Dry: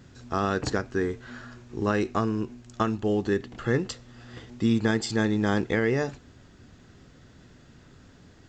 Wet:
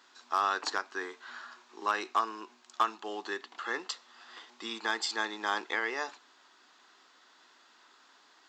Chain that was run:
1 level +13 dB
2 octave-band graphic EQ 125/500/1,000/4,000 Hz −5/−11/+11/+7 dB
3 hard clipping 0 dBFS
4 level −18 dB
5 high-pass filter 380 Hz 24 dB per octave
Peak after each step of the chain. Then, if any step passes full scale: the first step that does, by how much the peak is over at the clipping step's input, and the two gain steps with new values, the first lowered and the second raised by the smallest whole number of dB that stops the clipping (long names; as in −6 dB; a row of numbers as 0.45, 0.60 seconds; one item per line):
+2.5, +5.5, 0.0, −18.0, −13.5 dBFS
step 1, 5.5 dB
step 1 +7 dB, step 4 −12 dB